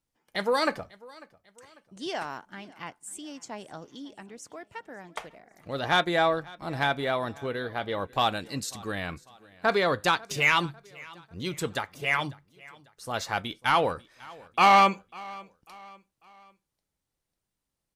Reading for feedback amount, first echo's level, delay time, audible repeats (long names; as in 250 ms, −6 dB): 43%, −22.5 dB, 546 ms, 2